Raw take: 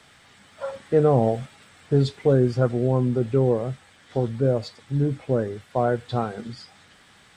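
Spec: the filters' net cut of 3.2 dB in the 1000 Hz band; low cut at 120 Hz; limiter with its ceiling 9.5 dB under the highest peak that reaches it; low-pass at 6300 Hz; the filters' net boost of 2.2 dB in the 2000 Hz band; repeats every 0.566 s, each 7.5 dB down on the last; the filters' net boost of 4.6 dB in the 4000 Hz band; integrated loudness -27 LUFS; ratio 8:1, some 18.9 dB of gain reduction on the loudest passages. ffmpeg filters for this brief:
-af "highpass=120,lowpass=6.3k,equalizer=f=1k:t=o:g=-6.5,equalizer=f=2k:t=o:g=5.5,equalizer=f=4k:t=o:g=5,acompressor=threshold=-35dB:ratio=8,alimiter=level_in=7.5dB:limit=-24dB:level=0:latency=1,volume=-7.5dB,aecho=1:1:566|1132|1698|2264|2830:0.422|0.177|0.0744|0.0312|0.0131,volume=15dB"

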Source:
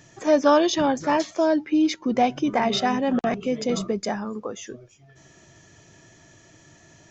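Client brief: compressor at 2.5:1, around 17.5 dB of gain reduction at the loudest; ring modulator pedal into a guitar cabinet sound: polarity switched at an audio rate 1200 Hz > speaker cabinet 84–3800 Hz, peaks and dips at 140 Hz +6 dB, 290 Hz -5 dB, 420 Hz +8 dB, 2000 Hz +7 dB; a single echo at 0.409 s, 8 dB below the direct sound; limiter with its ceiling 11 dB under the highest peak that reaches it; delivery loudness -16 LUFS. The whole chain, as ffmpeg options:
-af "acompressor=threshold=-41dB:ratio=2.5,alimiter=level_in=11dB:limit=-24dB:level=0:latency=1,volume=-11dB,aecho=1:1:409:0.398,aeval=exprs='val(0)*sgn(sin(2*PI*1200*n/s))':c=same,highpass=84,equalizer=f=140:t=q:w=4:g=6,equalizer=f=290:t=q:w=4:g=-5,equalizer=f=420:t=q:w=4:g=8,equalizer=f=2k:t=q:w=4:g=7,lowpass=f=3.8k:w=0.5412,lowpass=f=3.8k:w=1.3066,volume=25.5dB"

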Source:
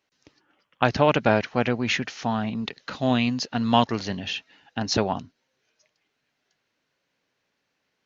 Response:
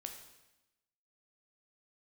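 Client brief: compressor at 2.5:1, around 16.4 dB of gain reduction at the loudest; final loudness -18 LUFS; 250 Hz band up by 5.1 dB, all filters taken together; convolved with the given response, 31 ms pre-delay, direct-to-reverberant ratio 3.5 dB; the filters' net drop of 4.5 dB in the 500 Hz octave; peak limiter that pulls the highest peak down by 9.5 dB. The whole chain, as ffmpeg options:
-filter_complex "[0:a]equalizer=f=250:t=o:g=7,equalizer=f=500:t=o:g=-7.5,acompressor=threshold=-40dB:ratio=2.5,alimiter=level_in=2dB:limit=-24dB:level=0:latency=1,volume=-2dB,asplit=2[a][b];[1:a]atrim=start_sample=2205,adelay=31[c];[b][c]afir=irnorm=-1:irlink=0,volume=-0.5dB[d];[a][d]amix=inputs=2:normalize=0,volume=19dB"

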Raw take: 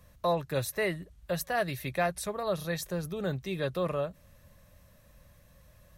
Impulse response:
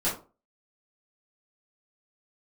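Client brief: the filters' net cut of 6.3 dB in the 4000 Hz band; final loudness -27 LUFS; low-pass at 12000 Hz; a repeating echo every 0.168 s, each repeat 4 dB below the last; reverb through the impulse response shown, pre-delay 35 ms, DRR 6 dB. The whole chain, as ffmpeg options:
-filter_complex "[0:a]lowpass=12k,equalizer=f=4k:t=o:g=-7.5,aecho=1:1:168|336|504|672|840|1008|1176|1344|1512:0.631|0.398|0.25|0.158|0.0994|0.0626|0.0394|0.0249|0.0157,asplit=2[a][b];[1:a]atrim=start_sample=2205,adelay=35[c];[b][c]afir=irnorm=-1:irlink=0,volume=-15.5dB[d];[a][d]amix=inputs=2:normalize=0,volume=2dB"

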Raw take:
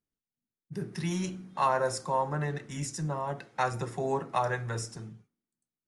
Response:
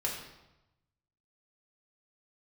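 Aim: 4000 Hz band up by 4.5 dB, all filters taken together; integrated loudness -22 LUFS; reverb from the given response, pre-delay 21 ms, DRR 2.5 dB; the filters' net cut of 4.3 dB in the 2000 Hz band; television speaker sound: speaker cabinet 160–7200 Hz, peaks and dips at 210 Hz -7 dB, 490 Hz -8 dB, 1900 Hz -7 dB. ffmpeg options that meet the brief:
-filter_complex "[0:a]equalizer=f=2k:t=o:g=-4,equalizer=f=4k:t=o:g=7.5,asplit=2[a][b];[1:a]atrim=start_sample=2205,adelay=21[c];[b][c]afir=irnorm=-1:irlink=0,volume=-7dB[d];[a][d]amix=inputs=2:normalize=0,highpass=f=160:w=0.5412,highpass=f=160:w=1.3066,equalizer=f=210:t=q:w=4:g=-7,equalizer=f=490:t=q:w=4:g=-8,equalizer=f=1.9k:t=q:w=4:g=-7,lowpass=f=7.2k:w=0.5412,lowpass=f=7.2k:w=1.3066,volume=10dB"

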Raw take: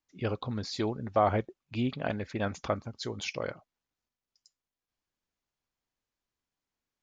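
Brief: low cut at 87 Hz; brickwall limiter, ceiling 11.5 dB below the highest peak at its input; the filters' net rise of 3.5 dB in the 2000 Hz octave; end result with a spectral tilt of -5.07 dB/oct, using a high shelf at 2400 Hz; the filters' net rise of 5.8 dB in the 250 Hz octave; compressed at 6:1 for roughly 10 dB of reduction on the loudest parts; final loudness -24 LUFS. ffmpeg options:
-af "highpass=87,equalizer=f=250:t=o:g=7,equalizer=f=2k:t=o:g=9,highshelf=f=2.4k:g=-8.5,acompressor=threshold=-29dB:ratio=6,volume=14dB,alimiter=limit=-11.5dB:level=0:latency=1"

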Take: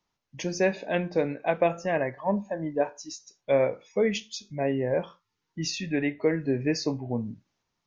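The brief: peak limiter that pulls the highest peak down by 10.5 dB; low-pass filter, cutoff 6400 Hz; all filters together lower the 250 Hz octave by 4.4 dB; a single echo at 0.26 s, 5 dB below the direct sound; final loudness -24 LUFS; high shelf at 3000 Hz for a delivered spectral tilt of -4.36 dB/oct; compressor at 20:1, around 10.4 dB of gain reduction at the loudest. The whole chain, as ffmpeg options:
-af "lowpass=6.4k,equalizer=f=250:t=o:g=-6,highshelf=f=3k:g=5,acompressor=threshold=-29dB:ratio=20,alimiter=level_in=6dB:limit=-24dB:level=0:latency=1,volume=-6dB,aecho=1:1:260:0.562,volume=15dB"

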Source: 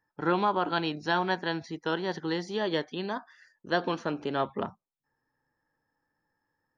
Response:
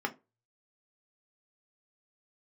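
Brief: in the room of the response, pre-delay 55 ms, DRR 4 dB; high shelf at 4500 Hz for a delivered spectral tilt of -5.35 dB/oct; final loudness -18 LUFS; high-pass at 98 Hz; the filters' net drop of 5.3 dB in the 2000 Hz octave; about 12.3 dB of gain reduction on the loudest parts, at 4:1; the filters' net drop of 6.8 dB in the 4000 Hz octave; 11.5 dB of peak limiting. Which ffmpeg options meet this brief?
-filter_complex "[0:a]highpass=98,equalizer=f=2k:t=o:g=-6,equalizer=f=4k:t=o:g=-4.5,highshelf=f=4.5k:g=-4,acompressor=threshold=-38dB:ratio=4,alimiter=level_in=12dB:limit=-24dB:level=0:latency=1,volume=-12dB,asplit=2[a][b];[1:a]atrim=start_sample=2205,adelay=55[c];[b][c]afir=irnorm=-1:irlink=0,volume=-10dB[d];[a][d]amix=inputs=2:normalize=0,volume=26.5dB"

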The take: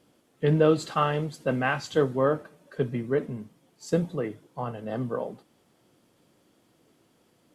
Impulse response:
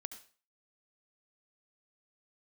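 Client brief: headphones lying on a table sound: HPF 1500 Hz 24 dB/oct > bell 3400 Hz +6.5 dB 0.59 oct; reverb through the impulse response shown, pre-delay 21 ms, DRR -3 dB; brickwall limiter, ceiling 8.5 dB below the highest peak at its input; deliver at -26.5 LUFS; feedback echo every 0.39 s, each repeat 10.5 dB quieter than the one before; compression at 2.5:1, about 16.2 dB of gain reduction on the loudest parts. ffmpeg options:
-filter_complex "[0:a]acompressor=threshold=-41dB:ratio=2.5,alimiter=level_in=7.5dB:limit=-24dB:level=0:latency=1,volume=-7.5dB,aecho=1:1:390|780|1170:0.299|0.0896|0.0269,asplit=2[a][b];[1:a]atrim=start_sample=2205,adelay=21[c];[b][c]afir=irnorm=-1:irlink=0,volume=6.5dB[d];[a][d]amix=inputs=2:normalize=0,highpass=f=1.5k:w=0.5412,highpass=f=1.5k:w=1.3066,equalizer=f=3.4k:t=o:w=0.59:g=6.5,volume=19dB"

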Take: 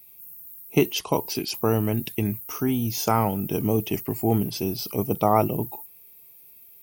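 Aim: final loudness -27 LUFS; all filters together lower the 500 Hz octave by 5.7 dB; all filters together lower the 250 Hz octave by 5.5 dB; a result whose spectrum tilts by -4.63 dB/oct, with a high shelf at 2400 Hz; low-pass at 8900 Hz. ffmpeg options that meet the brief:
-af "lowpass=8.9k,equalizer=f=250:t=o:g=-5.5,equalizer=f=500:t=o:g=-6,highshelf=f=2.4k:g=5,volume=0.5dB"

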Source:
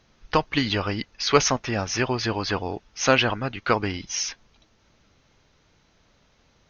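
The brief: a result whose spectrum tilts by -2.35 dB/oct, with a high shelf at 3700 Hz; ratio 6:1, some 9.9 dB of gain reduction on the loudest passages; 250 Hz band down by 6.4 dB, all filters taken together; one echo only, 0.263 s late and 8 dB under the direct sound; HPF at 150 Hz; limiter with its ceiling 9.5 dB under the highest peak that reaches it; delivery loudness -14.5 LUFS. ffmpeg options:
-af "highpass=150,equalizer=f=250:t=o:g=-7.5,highshelf=f=3.7k:g=-5,acompressor=threshold=-25dB:ratio=6,alimiter=limit=-21dB:level=0:latency=1,aecho=1:1:263:0.398,volume=18.5dB"

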